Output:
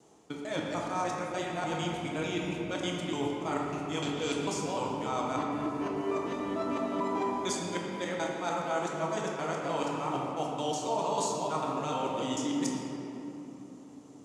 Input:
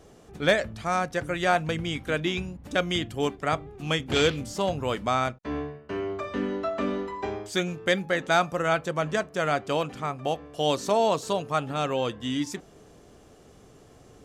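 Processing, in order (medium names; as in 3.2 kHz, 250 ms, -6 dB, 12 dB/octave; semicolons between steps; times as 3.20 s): time reversed locally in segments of 149 ms; reverse; compression 6:1, threshold -36 dBFS, peak gain reduction 18.5 dB; reverse; treble shelf 6.3 kHz +7.5 dB; bit crusher 10-bit; gate -48 dBFS, range -11 dB; cabinet simulation 130–9900 Hz, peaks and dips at 300 Hz +6 dB, 930 Hz +10 dB, 1.7 kHz -4 dB, 6.7 kHz +6 dB; simulated room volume 190 m³, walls hard, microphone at 0.6 m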